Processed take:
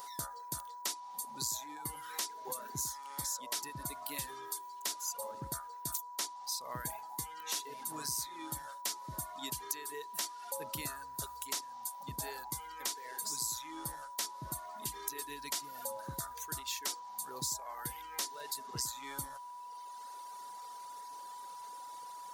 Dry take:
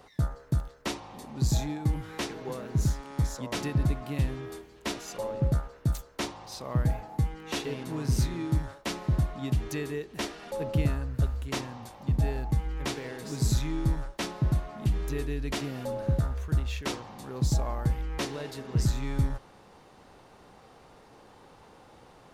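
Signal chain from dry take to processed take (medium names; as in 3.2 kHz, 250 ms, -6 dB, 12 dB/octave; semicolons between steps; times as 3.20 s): differentiator; reverb removal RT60 1.7 s; peaking EQ 2.6 kHz -8 dB 0.83 oct; compression 5:1, threshold -52 dBFS, peak gain reduction 15 dB; whistle 980 Hz -61 dBFS; trim +16 dB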